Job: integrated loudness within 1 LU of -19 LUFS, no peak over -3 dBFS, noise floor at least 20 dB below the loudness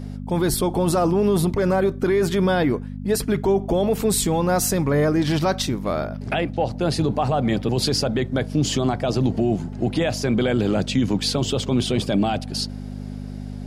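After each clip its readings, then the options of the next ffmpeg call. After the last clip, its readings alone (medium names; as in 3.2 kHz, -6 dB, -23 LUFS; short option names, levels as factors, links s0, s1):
hum 50 Hz; highest harmonic 250 Hz; hum level -30 dBFS; loudness -21.5 LUFS; peak level -10.0 dBFS; loudness target -19.0 LUFS
-> -af "bandreject=f=50:t=h:w=4,bandreject=f=100:t=h:w=4,bandreject=f=150:t=h:w=4,bandreject=f=200:t=h:w=4,bandreject=f=250:t=h:w=4"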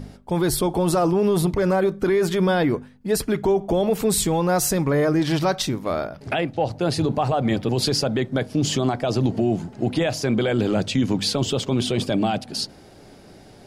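hum not found; loudness -22.0 LUFS; peak level -10.5 dBFS; loudness target -19.0 LUFS
-> -af "volume=1.41"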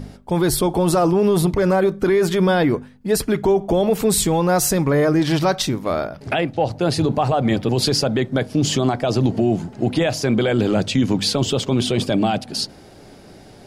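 loudness -19.0 LUFS; peak level -7.5 dBFS; noise floor -44 dBFS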